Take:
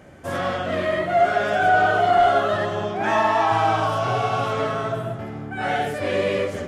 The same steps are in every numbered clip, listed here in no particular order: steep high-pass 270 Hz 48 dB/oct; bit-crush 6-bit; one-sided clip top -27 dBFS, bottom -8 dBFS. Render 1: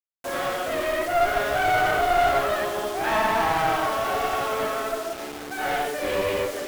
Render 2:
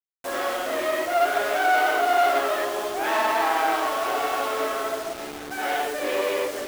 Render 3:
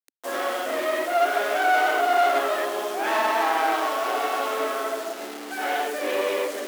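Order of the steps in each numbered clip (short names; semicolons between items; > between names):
steep high-pass > bit-crush > one-sided clip; one-sided clip > steep high-pass > bit-crush; bit-crush > one-sided clip > steep high-pass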